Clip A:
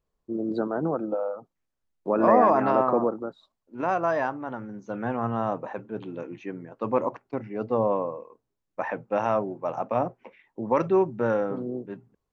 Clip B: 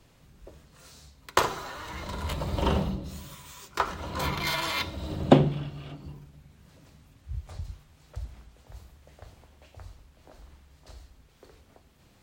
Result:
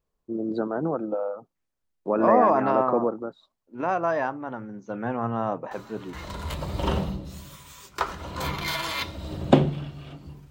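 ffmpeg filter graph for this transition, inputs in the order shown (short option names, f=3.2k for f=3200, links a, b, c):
-filter_complex "[1:a]asplit=2[a][b];[0:a]apad=whole_dur=10.5,atrim=end=10.5,atrim=end=6.132[c];[b]atrim=start=1.918:end=6.29[d];[a]atrim=start=1.5:end=1.92,asetpts=PTS-STARTPTS,volume=-10.5dB,afade=t=in:d=0.004:c=hsin,afade=t=out:st=0.416:d=0.004:c=hsin,adelay=5710[e];[c][d]acrossfade=d=0.004:c1=hsin:c2=hsin[f];[f][e]amix=inputs=2:normalize=0"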